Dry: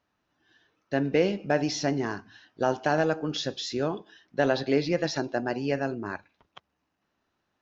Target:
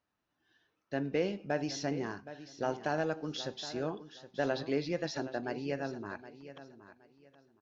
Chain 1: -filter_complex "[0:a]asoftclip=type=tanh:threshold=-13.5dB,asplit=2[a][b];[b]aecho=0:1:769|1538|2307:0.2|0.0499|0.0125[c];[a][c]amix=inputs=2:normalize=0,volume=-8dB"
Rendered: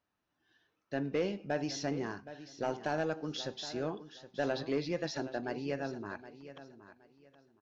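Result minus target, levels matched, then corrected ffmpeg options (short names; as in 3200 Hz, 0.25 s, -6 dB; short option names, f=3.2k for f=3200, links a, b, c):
soft clip: distortion +16 dB
-filter_complex "[0:a]asoftclip=type=tanh:threshold=-4dB,asplit=2[a][b];[b]aecho=0:1:769|1538|2307:0.2|0.0499|0.0125[c];[a][c]amix=inputs=2:normalize=0,volume=-8dB"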